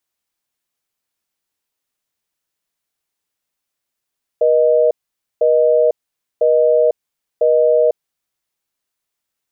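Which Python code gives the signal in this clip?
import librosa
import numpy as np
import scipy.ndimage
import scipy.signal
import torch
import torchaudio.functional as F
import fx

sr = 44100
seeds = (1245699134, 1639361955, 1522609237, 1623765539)

y = fx.call_progress(sr, length_s=3.96, kind='busy tone', level_db=-12.5)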